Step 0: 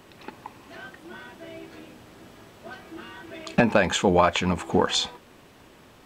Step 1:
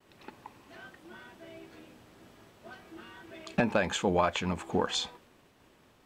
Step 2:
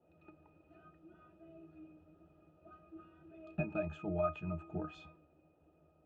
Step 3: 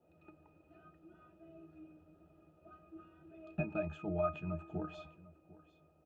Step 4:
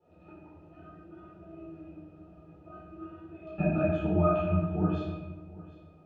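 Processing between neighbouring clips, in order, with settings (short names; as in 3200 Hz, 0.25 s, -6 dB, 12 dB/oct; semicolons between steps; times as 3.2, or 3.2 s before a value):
expander -48 dBFS; gain -7.5 dB
octave resonator D#, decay 0.16 s; band noise 240–720 Hz -76 dBFS; gain +2 dB
echo 0.75 s -19.5 dB
air absorption 98 m; shoebox room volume 440 m³, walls mixed, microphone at 4.2 m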